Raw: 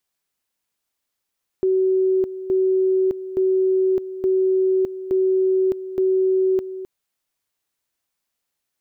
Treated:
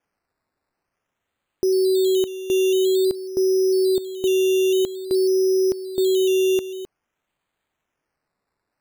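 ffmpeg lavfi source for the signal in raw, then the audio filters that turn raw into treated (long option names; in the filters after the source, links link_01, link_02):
-f lavfi -i "aevalsrc='pow(10,(-15-13*gte(mod(t,0.87),0.61))/20)*sin(2*PI*377*t)':duration=5.22:sample_rate=44100"
-af "acrusher=samples=11:mix=1:aa=0.000001:lfo=1:lforange=6.6:lforate=0.5"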